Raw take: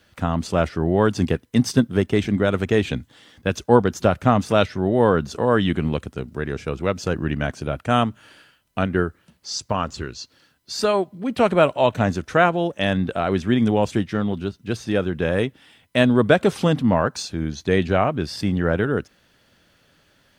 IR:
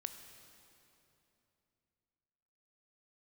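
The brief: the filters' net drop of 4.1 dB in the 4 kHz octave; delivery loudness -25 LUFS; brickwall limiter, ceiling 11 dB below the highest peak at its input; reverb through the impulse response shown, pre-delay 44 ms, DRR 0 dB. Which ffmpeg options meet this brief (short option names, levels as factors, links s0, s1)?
-filter_complex "[0:a]equalizer=f=4000:t=o:g=-5.5,alimiter=limit=0.251:level=0:latency=1,asplit=2[s0][s1];[1:a]atrim=start_sample=2205,adelay=44[s2];[s1][s2]afir=irnorm=-1:irlink=0,volume=1.33[s3];[s0][s3]amix=inputs=2:normalize=0,volume=0.708"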